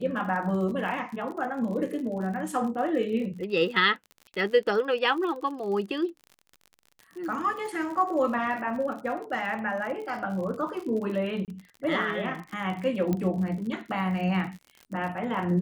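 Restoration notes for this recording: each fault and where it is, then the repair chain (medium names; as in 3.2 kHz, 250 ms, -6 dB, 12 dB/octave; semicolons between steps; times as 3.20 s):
crackle 58 per s -36 dBFS
11.45–11.48 s: dropout 28 ms
13.13 s: pop -16 dBFS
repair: de-click; interpolate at 11.45 s, 28 ms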